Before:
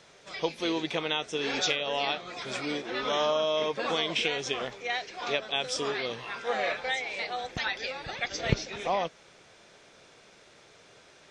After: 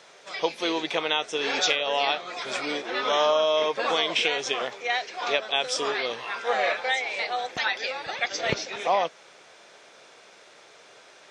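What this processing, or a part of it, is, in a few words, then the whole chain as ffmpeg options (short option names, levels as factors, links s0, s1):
filter by subtraction: -filter_complex "[0:a]asplit=2[s0][s1];[s1]lowpass=720,volume=-1[s2];[s0][s2]amix=inputs=2:normalize=0,volume=1.58"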